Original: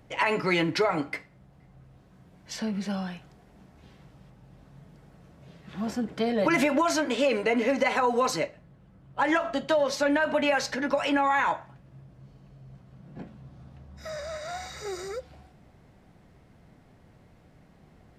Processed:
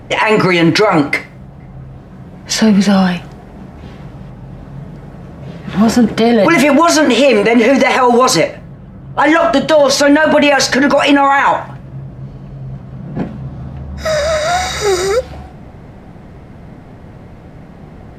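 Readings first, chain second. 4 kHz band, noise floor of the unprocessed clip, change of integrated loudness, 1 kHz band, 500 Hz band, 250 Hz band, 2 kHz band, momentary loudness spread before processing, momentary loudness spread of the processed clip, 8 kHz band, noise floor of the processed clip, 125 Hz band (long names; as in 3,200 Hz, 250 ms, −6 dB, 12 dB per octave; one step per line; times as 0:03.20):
+17.5 dB, −57 dBFS, +15.5 dB, +15.0 dB, +15.5 dB, +17.5 dB, +15.0 dB, 16 LU, 20 LU, +19.0 dB, −35 dBFS, +20.0 dB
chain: boost into a limiter +23 dB
one half of a high-frequency compander decoder only
level −1 dB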